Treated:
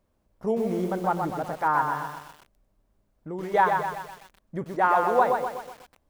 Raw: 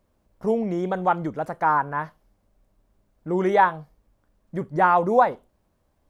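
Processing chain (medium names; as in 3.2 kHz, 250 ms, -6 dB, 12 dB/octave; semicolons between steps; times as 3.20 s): 0.84–1.33 s: low-pass 1.5 kHz 6 dB/octave; 1.92–3.54 s: compression 2:1, threshold -34 dBFS, peak gain reduction 9 dB; 4.64–5.19 s: high-pass 310 Hz 12 dB/octave; bit-crushed delay 125 ms, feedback 55%, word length 7-bit, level -4.5 dB; trim -3.5 dB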